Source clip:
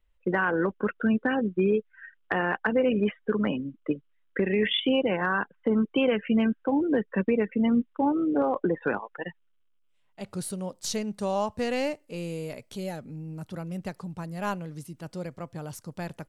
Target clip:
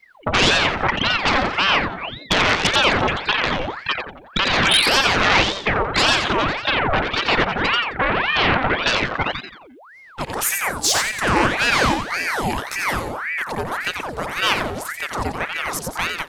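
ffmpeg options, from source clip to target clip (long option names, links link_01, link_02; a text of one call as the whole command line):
ffmpeg -i in.wav -filter_complex "[0:a]aeval=exprs='0.266*sin(PI/2*3.98*val(0)/0.266)':channel_layout=same,acrossover=split=490|3000[link_01][link_02][link_03];[link_01]acompressor=threshold=-28dB:ratio=6[link_04];[link_04][link_02][link_03]amix=inputs=3:normalize=0,asplit=2[link_05][link_06];[link_06]aecho=0:1:88|176|264|352|440:0.531|0.223|0.0936|0.0393|0.0165[link_07];[link_05][link_07]amix=inputs=2:normalize=0,aeval=exprs='val(0)*sin(2*PI*1200*n/s+1200*0.8/1.8*sin(2*PI*1.8*n/s))':channel_layout=same,volume=3dB" out.wav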